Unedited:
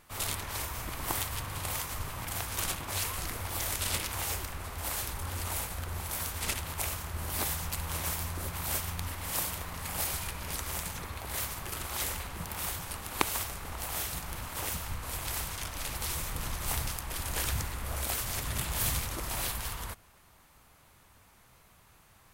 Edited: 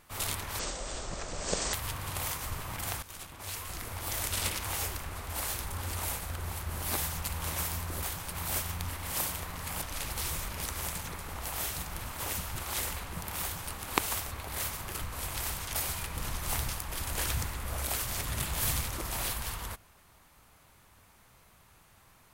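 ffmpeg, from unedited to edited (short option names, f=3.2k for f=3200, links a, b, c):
-filter_complex "[0:a]asplit=15[a][b][c][d][e][f][g][h][i][j][k][l][m][n][o];[a]atrim=end=0.594[p];[b]atrim=start=0.59:end=1.22,asetpts=PTS-STARTPTS,asetrate=24255,aresample=44100[q];[c]atrim=start=1.216:end=2.51,asetpts=PTS-STARTPTS,afade=t=out:st=1.29:d=0.004:c=hsin:silence=0.149624[r];[d]atrim=start=2.51:end=6.102,asetpts=PTS-STARTPTS,afade=t=in:d=1.25:silence=0.149624[s];[e]atrim=start=7.088:end=8.502[t];[f]atrim=start=12.648:end=12.942[u];[g]atrim=start=8.498:end=10.002[v];[h]atrim=start=15.658:end=16.332[w];[i]atrim=start=10.388:end=11.092[x];[j]atrim=start=13.548:end=14.922[y];[k]atrim=start=11.788:end=13.552[z];[l]atrim=start=11.088:end=11.792[aa];[m]atrim=start=14.918:end=15.662[ab];[n]atrim=start=9.998:end=10.392[ac];[o]atrim=start=16.328[ad];[p][q]acrossfade=d=0.004:c1=hsin:c2=hsin[ae];[r][s]concat=n=2:v=0:a=1[af];[ae][af]acrossfade=d=0.004:c1=hsin:c2=hsin[ag];[ag][t]acrossfade=d=0.004:c1=hsin:c2=hsin[ah];[ah][u]acrossfade=d=0.004:c1=hsin:c2=hsin[ai];[ai][v]acrossfade=d=0.004:c1=hsin:c2=hsin[aj];[aj][w]acrossfade=d=0.004:c1=hsin:c2=hsin[ak];[ak][x]acrossfade=d=0.004:c1=hsin:c2=hsin[al];[al][y]acrossfade=d=0.004:c1=hsin:c2=hsin[am];[am][z]acrossfade=d=0.004:c1=hsin:c2=hsin[an];[an][aa]acrossfade=d=0.004:c1=hsin:c2=hsin[ao];[ao][ab]acrossfade=d=0.004:c1=hsin:c2=hsin[ap];[ap][ac]acrossfade=d=0.004:c1=hsin:c2=hsin[aq];[aq][ad]acrossfade=d=0.004:c1=hsin:c2=hsin"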